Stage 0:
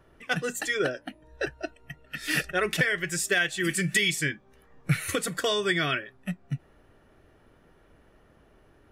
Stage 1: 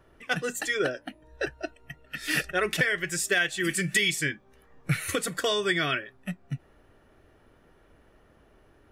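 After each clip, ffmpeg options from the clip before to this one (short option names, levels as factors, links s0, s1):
-af "equalizer=f=160:t=o:w=0.75:g=-2.5"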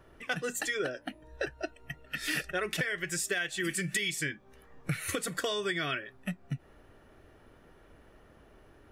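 -af "acompressor=threshold=0.0224:ratio=3,volume=1.19"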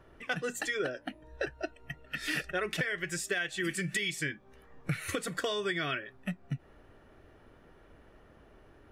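-af "highshelf=f=6600:g=-7.5"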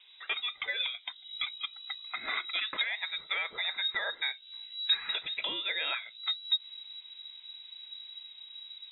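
-af "asubboost=boost=5:cutoff=130,lowpass=f=3300:t=q:w=0.5098,lowpass=f=3300:t=q:w=0.6013,lowpass=f=3300:t=q:w=0.9,lowpass=f=3300:t=q:w=2.563,afreqshift=-3900"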